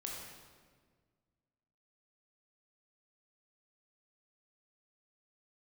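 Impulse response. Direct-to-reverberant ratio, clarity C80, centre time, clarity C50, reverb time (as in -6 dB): -2.5 dB, 2.0 dB, 81 ms, 0.0 dB, 1.6 s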